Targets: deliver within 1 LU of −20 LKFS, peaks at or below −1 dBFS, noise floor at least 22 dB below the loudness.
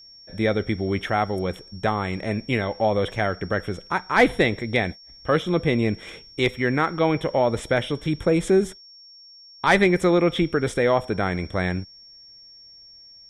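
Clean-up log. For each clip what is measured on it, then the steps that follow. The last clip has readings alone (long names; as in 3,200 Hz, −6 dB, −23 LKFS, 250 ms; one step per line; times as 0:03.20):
interfering tone 5,500 Hz; level of the tone −45 dBFS; integrated loudness −23.0 LKFS; sample peak −6.5 dBFS; target loudness −20.0 LKFS
→ notch filter 5,500 Hz, Q 30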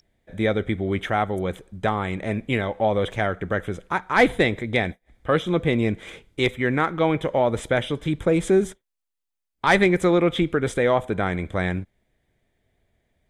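interfering tone none found; integrated loudness −23.0 LKFS; sample peak −6.5 dBFS; target loudness −20.0 LKFS
→ level +3 dB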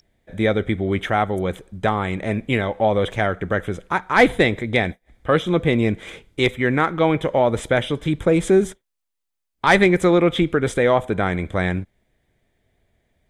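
integrated loudness −20.0 LKFS; sample peak −3.5 dBFS; background noise floor −79 dBFS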